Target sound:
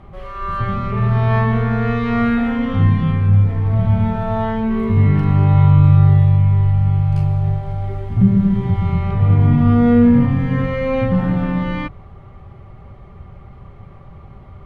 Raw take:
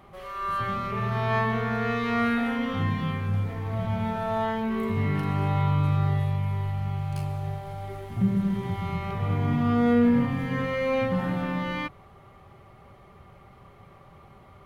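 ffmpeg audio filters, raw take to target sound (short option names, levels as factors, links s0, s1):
-af "aemphasis=mode=reproduction:type=bsi,volume=1.68"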